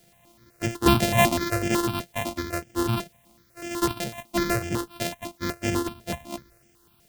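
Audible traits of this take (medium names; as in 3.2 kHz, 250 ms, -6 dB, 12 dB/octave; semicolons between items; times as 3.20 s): a buzz of ramps at a fixed pitch in blocks of 128 samples; random-step tremolo; a quantiser's noise floor 12-bit, dither triangular; notches that jump at a steady rate 8 Hz 300–4000 Hz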